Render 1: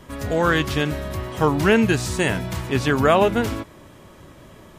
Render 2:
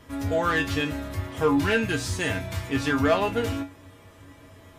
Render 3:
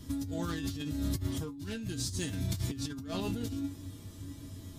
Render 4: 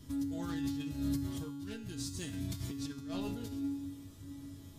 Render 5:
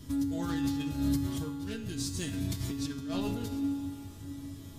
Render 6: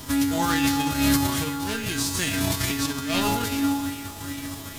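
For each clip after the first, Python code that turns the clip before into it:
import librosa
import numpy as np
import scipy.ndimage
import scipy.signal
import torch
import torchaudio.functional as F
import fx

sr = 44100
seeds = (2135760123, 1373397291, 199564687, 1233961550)

y1 = fx.peak_eq(x, sr, hz=2100.0, db=2.5, octaves=1.7)
y1 = 10.0 ** (-10.5 / 20.0) * np.tanh(y1 / 10.0 ** (-10.5 / 20.0))
y1 = fx.comb_fb(y1, sr, f0_hz=93.0, decay_s=0.22, harmonics='odd', damping=0.0, mix_pct=90)
y1 = y1 * 10.0 ** (5.5 / 20.0)
y2 = fx.band_shelf(y1, sr, hz=1100.0, db=-15.5, octaves=3.0)
y2 = fx.over_compress(y2, sr, threshold_db=-36.0, ratio=-1.0)
y3 = fx.comb_fb(y2, sr, f0_hz=140.0, decay_s=1.2, harmonics='all', damping=0.0, mix_pct=80)
y3 = y3 * 10.0 ** (6.5 / 20.0)
y4 = fx.rev_spring(y3, sr, rt60_s=3.6, pass_ms=(45,), chirp_ms=40, drr_db=11.5)
y4 = y4 * 10.0 ** (5.5 / 20.0)
y5 = fx.envelope_flatten(y4, sr, power=0.6)
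y5 = fx.quant_dither(y5, sr, seeds[0], bits=10, dither='none')
y5 = fx.bell_lfo(y5, sr, hz=2.4, low_hz=820.0, high_hz=2500.0, db=8)
y5 = y5 * 10.0 ** (8.0 / 20.0)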